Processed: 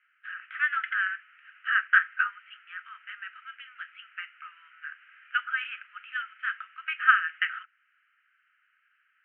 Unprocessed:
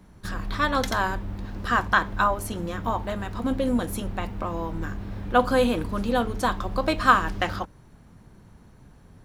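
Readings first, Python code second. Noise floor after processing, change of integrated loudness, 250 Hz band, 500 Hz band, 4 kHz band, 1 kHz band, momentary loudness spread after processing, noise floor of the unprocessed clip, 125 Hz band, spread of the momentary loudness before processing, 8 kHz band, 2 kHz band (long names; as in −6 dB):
−71 dBFS, −2.0 dB, below −40 dB, below −40 dB, −6.5 dB, −8.5 dB, 21 LU, −52 dBFS, below −40 dB, 12 LU, below −40 dB, +3.0 dB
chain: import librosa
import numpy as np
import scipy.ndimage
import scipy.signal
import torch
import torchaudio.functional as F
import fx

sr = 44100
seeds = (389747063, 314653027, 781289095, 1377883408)

y = scipy.signal.sosfilt(scipy.signal.cheby1(5, 1.0, [1300.0, 3000.0], 'bandpass', fs=sr, output='sos'), x)
y = fx.dynamic_eq(y, sr, hz=1800.0, q=2.6, threshold_db=-41.0, ratio=4.0, max_db=5)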